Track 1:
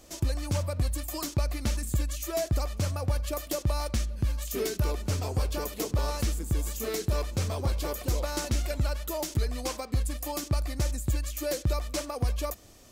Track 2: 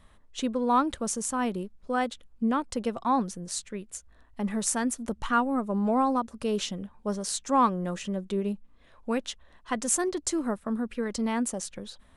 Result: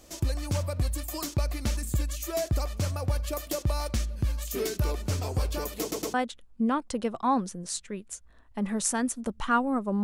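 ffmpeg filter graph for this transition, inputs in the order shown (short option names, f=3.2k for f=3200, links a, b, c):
-filter_complex "[0:a]apad=whole_dur=10.03,atrim=end=10.03,asplit=3[a][b][c];[a]atrim=end=5.922[d];[b]atrim=start=5.808:end=5.922[e];[c]atrim=start=5.808:end=5.922[f];[1:a]atrim=start=1.958:end=5.85[g];[d][e]acrossfade=d=0.004:c1=hsin:c2=hsin[h];[h][f]acrossfade=d=0.004:c1=hsin:c2=hsin[i];[i][g]acrossfade=d=0.004:c1=hsin:c2=hsin"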